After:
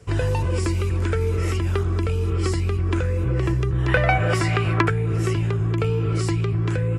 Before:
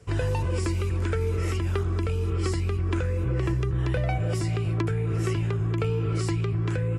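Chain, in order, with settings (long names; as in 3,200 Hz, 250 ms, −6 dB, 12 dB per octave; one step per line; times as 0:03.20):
0:03.88–0:04.90: parametric band 1,500 Hz +13 dB 2.3 octaves
level +4 dB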